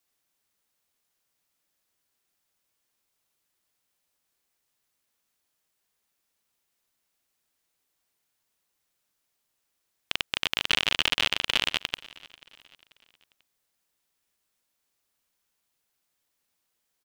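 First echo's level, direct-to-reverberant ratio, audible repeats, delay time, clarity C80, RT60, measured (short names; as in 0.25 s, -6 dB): -22.0 dB, none, 2, 0.489 s, none, none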